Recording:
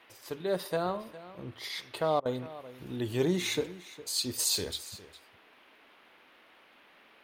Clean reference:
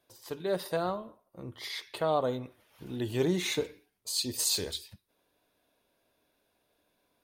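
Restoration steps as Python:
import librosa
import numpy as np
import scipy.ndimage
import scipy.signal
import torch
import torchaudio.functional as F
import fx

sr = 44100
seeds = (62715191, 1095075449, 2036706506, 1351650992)

y = fx.fix_declick_ar(x, sr, threshold=6.5)
y = fx.fix_interpolate(y, sr, at_s=(2.2,), length_ms=54.0)
y = fx.noise_reduce(y, sr, print_start_s=6.25, print_end_s=6.75, reduce_db=15.0)
y = fx.fix_echo_inverse(y, sr, delay_ms=408, level_db=-17.0)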